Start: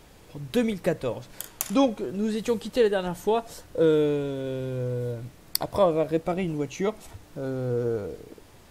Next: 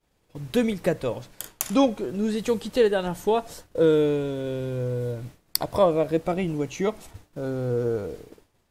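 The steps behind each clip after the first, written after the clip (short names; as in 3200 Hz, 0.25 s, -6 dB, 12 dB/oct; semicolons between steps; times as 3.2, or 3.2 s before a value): expander -39 dBFS; gain +1.5 dB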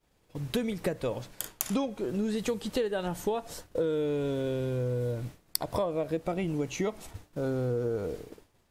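compressor 10:1, threshold -26 dBFS, peak gain reduction 13 dB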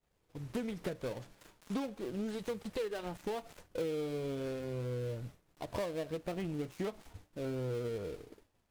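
switching dead time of 0.18 ms; flange 0.38 Hz, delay 1.4 ms, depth 4.8 ms, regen -72%; Doppler distortion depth 0.14 ms; gain -3 dB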